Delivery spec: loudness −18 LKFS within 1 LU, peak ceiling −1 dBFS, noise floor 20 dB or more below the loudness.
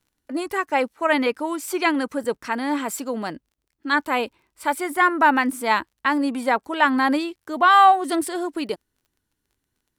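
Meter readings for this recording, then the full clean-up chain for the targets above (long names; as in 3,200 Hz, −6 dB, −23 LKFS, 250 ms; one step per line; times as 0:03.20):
crackle rate 24 per second; integrated loudness −21.5 LKFS; sample peak −3.5 dBFS; target loudness −18.0 LKFS
→ click removal
level +3.5 dB
brickwall limiter −1 dBFS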